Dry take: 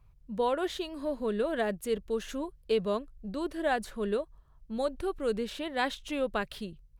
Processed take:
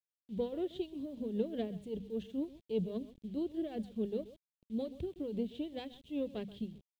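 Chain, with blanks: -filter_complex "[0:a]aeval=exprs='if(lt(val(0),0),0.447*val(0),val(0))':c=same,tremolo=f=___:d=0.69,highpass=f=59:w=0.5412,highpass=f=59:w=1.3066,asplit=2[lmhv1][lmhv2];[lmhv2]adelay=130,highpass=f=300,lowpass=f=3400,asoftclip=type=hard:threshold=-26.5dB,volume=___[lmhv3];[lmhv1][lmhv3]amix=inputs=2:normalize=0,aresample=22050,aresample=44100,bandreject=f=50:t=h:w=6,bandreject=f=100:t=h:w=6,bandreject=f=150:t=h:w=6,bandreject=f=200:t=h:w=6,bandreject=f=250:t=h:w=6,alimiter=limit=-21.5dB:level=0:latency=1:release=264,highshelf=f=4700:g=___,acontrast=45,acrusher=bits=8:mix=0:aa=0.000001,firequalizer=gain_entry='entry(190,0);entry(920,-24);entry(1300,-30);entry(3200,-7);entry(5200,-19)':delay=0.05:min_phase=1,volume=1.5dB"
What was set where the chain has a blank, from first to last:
5, -16dB, -10.5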